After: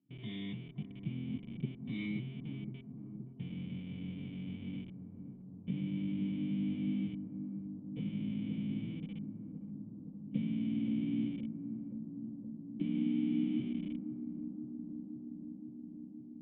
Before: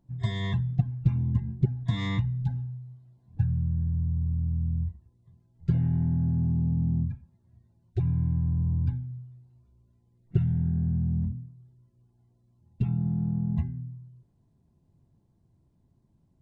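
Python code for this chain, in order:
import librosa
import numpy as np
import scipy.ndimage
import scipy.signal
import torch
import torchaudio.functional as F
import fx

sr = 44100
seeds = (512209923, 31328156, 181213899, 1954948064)

p1 = fx.pitch_glide(x, sr, semitones=8.5, runs='starting unshifted')
p2 = scipy.signal.sosfilt(scipy.signal.butter(4, 130.0, 'highpass', fs=sr, output='sos'), p1)
p3 = fx.schmitt(p2, sr, flips_db=-39.0)
p4 = p2 + F.gain(torch.from_numpy(p3), -3.5).numpy()
p5 = fx.formant_cascade(p4, sr, vowel='i')
p6 = fx.tilt_eq(p5, sr, slope=3.0)
p7 = p6 + fx.echo_bbd(p6, sr, ms=521, stages=4096, feedback_pct=79, wet_db=-9.0, dry=0)
y = F.gain(torch.from_numpy(p7), 4.0).numpy()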